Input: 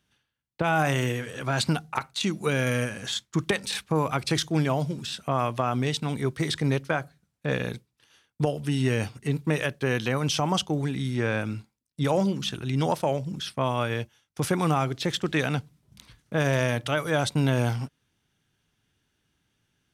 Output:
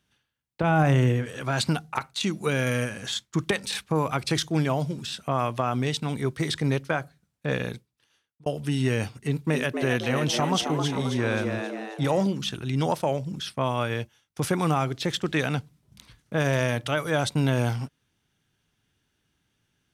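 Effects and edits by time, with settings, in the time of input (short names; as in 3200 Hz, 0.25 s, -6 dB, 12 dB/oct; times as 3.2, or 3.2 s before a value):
0.63–1.26 tilt -2.5 dB/oct
7.62–8.46 fade out
9.21–12.27 frequency-shifting echo 0.266 s, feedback 50%, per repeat +110 Hz, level -6 dB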